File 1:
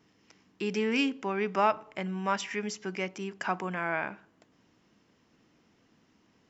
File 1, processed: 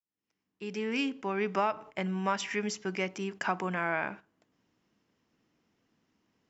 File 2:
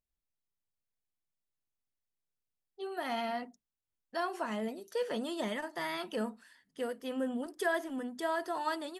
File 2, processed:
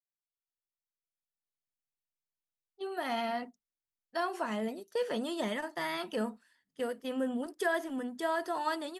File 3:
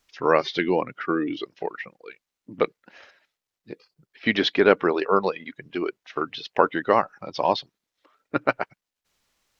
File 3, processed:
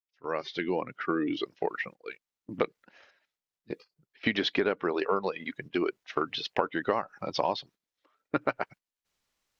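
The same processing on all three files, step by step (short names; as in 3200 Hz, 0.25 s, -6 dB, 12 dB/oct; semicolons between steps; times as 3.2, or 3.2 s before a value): opening faded in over 1.72 s; gate -45 dBFS, range -10 dB; compressor 8:1, threshold -25 dBFS; gain +1.5 dB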